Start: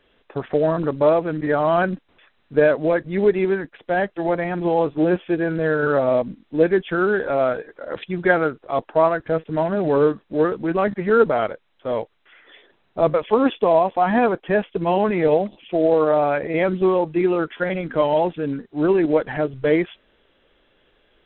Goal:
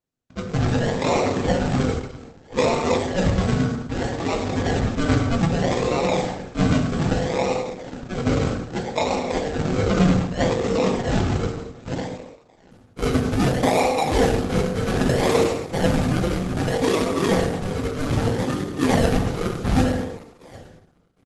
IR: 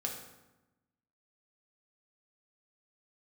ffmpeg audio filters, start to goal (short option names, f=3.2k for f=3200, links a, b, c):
-filter_complex "[0:a]highpass=f=87:w=0.5412,highpass=f=87:w=1.3066,equalizer=f=1.2k:t=o:w=2.3:g=-11.5,acrossover=split=470[a][b];[a]aeval=exprs='val(0)*(1-0.7/2+0.7/2*cos(2*PI*9.4*n/s))':c=same[c];[b]aeval=exprs='val(0)*(1-0.7/2-0.7/2*cos(2*PI*9.4*n/s))':c=same[d];[c][d]amix=inputs=2:normalize=0,asplit=3[e][f][g];[e]afade=t=out:st=8.31:d=0.02[h];[f]adynamicequalizer=threshold=0.00631:dfrequency=2800:dqfactor=0.85:tfrequency=2800:tqfactor=0.85:attack=5:release=100:ratio=0.375:range=1.5:mode=boostabove:tftype=bell,afade=t=in:st=8.31:d=0.02,afade=t=out:st=9.68:d=0.02[i];[g]afade=t=in:st=9.68:d=0.02[j];[h][i][j]amix=inputs=3:normalize=0,asplit=2[k][l];[l]adelay=757,lowpass=f=3.1k:p=1,volume=-22dB,asplit=2[m][n];[n]adelay=757,lowpass=f=3.1k:p=1,volume=0.25[o];[k][m][o]amix=inputs=3:normalize=0,agate=range=-33dB:threshold=-56dB:ratio=3:detection=peak,aeval=exprs='val(0)*sin(2*PI*1500*n/s)':c=same,aecho=1:1:103|206|309|412:0.447|0.17|0.0645|0.0245,acrusher=samples=39:mix=1:aa=0.000001:lfo=1:lforange=23.4:lforate=0.63[p];[1:a]atrim=start_sample=2205,afade=t=out:st=0.36:d=0.01,atrim=end_sample=16317[q];[p][q]afir=irnorm=-1:irlink=0,volume=7dB" -ar 48000 -c:a libopus -b:a 12k